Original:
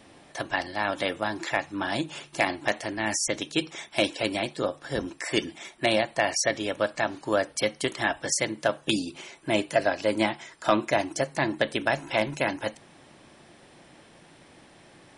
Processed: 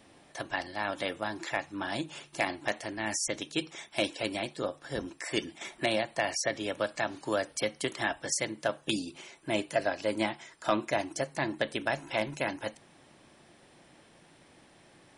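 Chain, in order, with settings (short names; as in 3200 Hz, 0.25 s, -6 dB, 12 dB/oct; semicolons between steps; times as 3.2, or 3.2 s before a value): high shelf 9300 Hz +3.5 dB; 5.61–8.15 three-band squash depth 40%; gain -5.5 dB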